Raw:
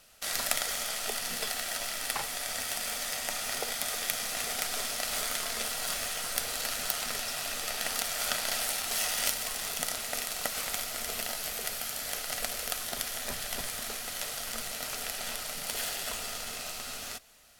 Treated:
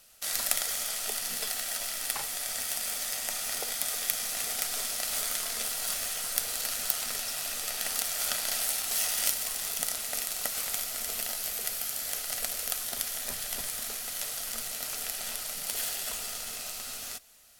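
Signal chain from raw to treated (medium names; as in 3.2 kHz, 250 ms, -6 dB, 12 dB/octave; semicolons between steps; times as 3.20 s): treble shelf 5.3 kHz +9 dB; trim -4 dB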